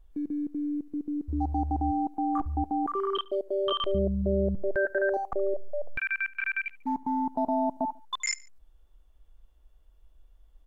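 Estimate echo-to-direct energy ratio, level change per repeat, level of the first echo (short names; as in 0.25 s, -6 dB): -22.0 dB, -5.5 dB, -23.0 dB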